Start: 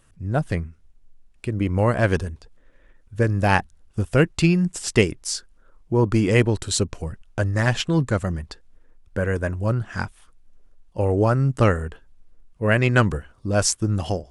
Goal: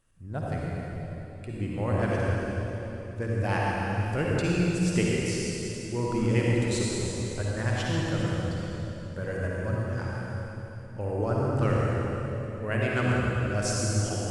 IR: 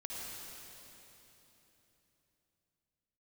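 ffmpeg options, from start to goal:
-filter_complex "[1:a]atrim=start_sample=2205[link_01];[0:a][link_01]afir=irnorm=-1:irlink=0,volume=-6.5dB"

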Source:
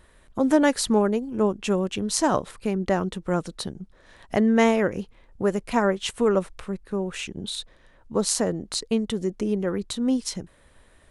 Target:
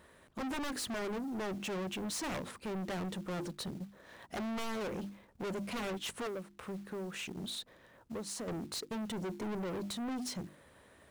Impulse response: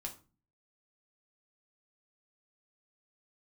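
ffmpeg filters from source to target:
-filter_complex "[0:a]highpass=110,highshelf=frequency=2100:gain=-5.5,bandreject=frequency=50:width_type=h:width=6,bandreject=frequency=100:width_type=h:width=6,bandreject=frequency=150:width_type=h:width=6,bandreject=frequency=200:width_type=h:width=6,bandreject=frequency=250:width_type=h:width=6,bandreject=frequency=300:width_type=h:width=6,bandreject=frequency=350:width_type=h:width=6,asettb=1/sr,asplit=3[link_01][link_02][link_03];[link_01]atrim=end=6.274[link_04];[link_02]atrim=start=6.27:end=8.48,asetpts=PTS-STARTPTS,afade=type=in:duration=0.004:curve=qsin,afade=type=out:start_time=2.206:duration=0.004:curve=qsin,acompressor=threshold=-33dB:ratio=10[link_05];[link_03]atrim=start=8.476[link_06];[link_04][link_05]acrossfade=duration=0.004:curve1=hsin:curve2=qsin[link_07];[link_07][link_06]acrossfade=duration=0.004:curve1=qsin:curve2=hsin,aeval=exprs='0.1*(abs(mod(val(0)/0.1+3,4)-2)-1)':channel_layout=same,acrusher=bits=4:mode=log:mix=0:aa=0.000001,asoftclip=type=tanh:threshold=-36dB"

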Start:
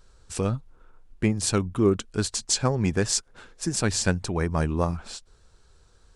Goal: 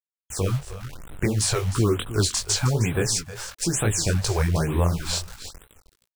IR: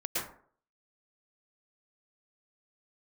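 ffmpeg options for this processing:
-filter_complex "[0:a]equalizer=frequency=230:width=1.6:gain=-9.5,dynaudnorm=framelen=160:gausssize=9:maxgain=13dB,asplit=2[link_01][link_02];[link_02]alimiter=limit=-12dB:level=0:latency=1:release=31,volume=-1dB[link_03];[link_01][link_03]amix=inputs=2:normalize=0,acrossover=split=480|1300|2700[link_04][link_05][link_06][link_07];[link_04]acompressor=threshold=-16dB:ratio=4[link_08];[link_05]acompressor=threshold=-31dB:ratio=4[link_09];[link_06]acompressor=threshold=-34dB:ratio=4[link_10];[link_07]acompressor=threshold=-20dB:ratio=4[link_11];[link_08][link_09][link_10][link_11]amix=inputs=4:normalize=0,acrusher=bits=5:mix=0:aa=0.000001,flanger=delay=17.5:depth=7:speed=2.8,aecho=1:1:312:0.224,afftfilt=real='re*(1-between(b*sr/1024,220*pow(5800/220,0.5+0.5*sin(2*PI*1.1*pts/sr))/1.41,220*pow(5800/220,0.5+0.5*sin(2*PI*1.1*pts/sr))*1.41))':imag='im*(1-between(b*sr/1024,220*pow(5800/220,0.5+0.5*sin(2*PI*1.1*pts/sr))/1.41,220*pow(5800/220,0.5+0.5*sin(2*PI*1.1*pts/sr))*1.41))':win_size=1024:overlap=0.75"

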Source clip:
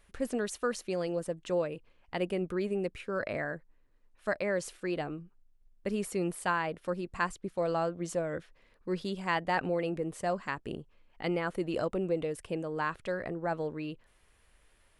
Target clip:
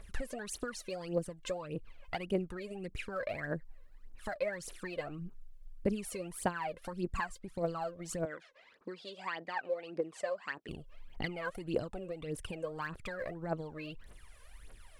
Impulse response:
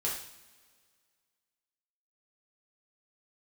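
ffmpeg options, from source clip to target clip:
-filter_complex "[0:a]acompressor=threshold=-41dB:ratio=6,aphaser=in_gain=1:out_gain=1:delay=2:decay=0.76:speed=1.7:type=triangular,asettb=1/sr,asplit=3[link_01][link_02][link_03];[link_01]atrim=end=8.254[link_04];[link_02]atrim=start=8.25:end=10.69,asetpts=PTS-STARTPTS,afade=type=in:duration=0.004:curve=qsin,afade=type=out:start_time=2.436:duration=0.004:curve=qsin,highpass=380,lowpass=5500[link_05];[link_03]atrim=start=10.686[link_06];[link_04][link_05]acrossfade=duration=0.004:curve1=hsin:curve2=qsin[link_07];[link_07][link_06]acrossfade=duration=0.004:curve1=qsin:curve2=hsin,volume=3dB"

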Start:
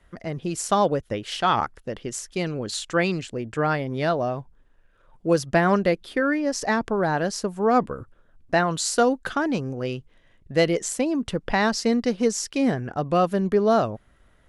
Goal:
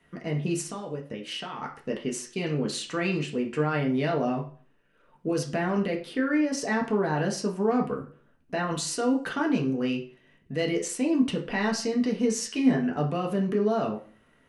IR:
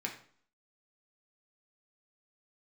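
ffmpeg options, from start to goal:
-filter_complex "[0:a]alimiter=limit=-19dB:level=0:latency=1:release=17,asettb=1/sr,asplit=3[link_01][link_02][link_03];[link_01]atrim=end=0.614[link_04];[link_02]atrim=start=0.61:end=1.62,asetpts=PTS-STARTPTS,afade=type=in:duration=0.004:curve=qsin,afade=type=out:start_time=1.006:duration=0.004:curve=qsin,acompressor=threshold=-34dB:ratio=4[link_05];[link_03]atrim=start=1.616[link_06];[link_04][link_05]acrossfade=duration=0.004:curve1=hsin:curve2=qsin[link_07];[link_07][link_06]acrossfade=duration=0.004:curve1=qsin:curve2=hsin,asettb=1/sr,asplit=3[link_08][link_09][link_10];[link_08]atrim=end=12.334[link_11];[link_09]atrim=start=12.33:end=12.98,asetpts=PTS-STARTPTS,afade=type=in:duration=0.004:curve=qsin,afade=type=out:start_time=0.646:duration=0.004:curve=qsin,asplit=2[link_12][link_13];[link_13]adelay=12,volume=-5.5dB[link_14];[link_12][link_14]amix=inputs=2:normalize=0,atrim=end_sample=28665[link_15];[link_10]atrim=start=12.976[link_16];[link_11][link_15]acrossfade=duration=0.004:curve1=hsin:curve2=qsin[link_17];[link_17][link_16]acrossfade=duration=0.004:curve1=qsin:curve2=hsin[link_18];[1:a]atrim=start_sample=2205,asetrate=52920,aresample=44100[link_19];[link_18][link_19]afir=irnorm=-1:irlink=0"

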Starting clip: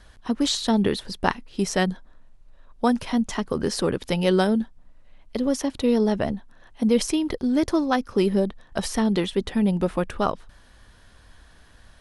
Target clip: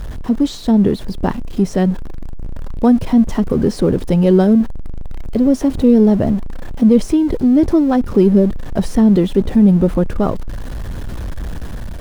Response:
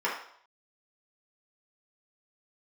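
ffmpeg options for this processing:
-af "aeval=exprs='val(0)+0.5*0.0398*sgn(val(0))':channel_layout=same,tiltshelf=frequency=750:gain=9.5,dynaudnorm=framelen=320:gausssize=5:maxgain=4.5dB"

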